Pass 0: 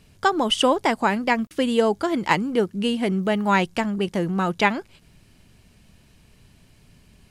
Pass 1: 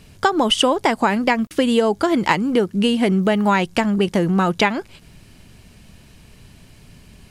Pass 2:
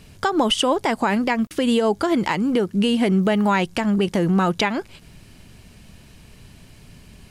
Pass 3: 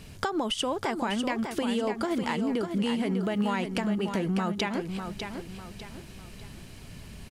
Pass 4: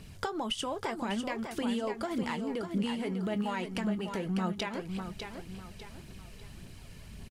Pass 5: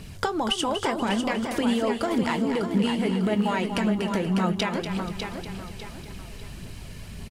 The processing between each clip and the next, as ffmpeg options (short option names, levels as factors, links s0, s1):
-af "acompressor=threshold=0.0891:ratio=6,volume=2.51"
-af "alimiter=limit=0.335:level=0:latency=1:release=92"
-filter_complex "[0:a]acompressor=threshold=0.0398:ratio=4,asplit=2[s0][s1];[s1]aecho=0:1:599|1198|1797|2396:0.447|0.165|0.0612|0.0226[s2];[s0][s2]amix=inputs=2:normalize=0"
-filter_complex "[0:a]aphaser=in_gain=1:out_gain=1:delay=2.4:decay=0.36:speed=1.8:type=triangular,asplit=2[s0][s1];[s1]adelay=22,volume=0.2[s2];[s0][s2]amix=inputs=2:normalize=0,volume=0.531"
-af "aecho=1:1:240|480|720|960:0.376|0.124|0.0409|0.0135,volume=2.51"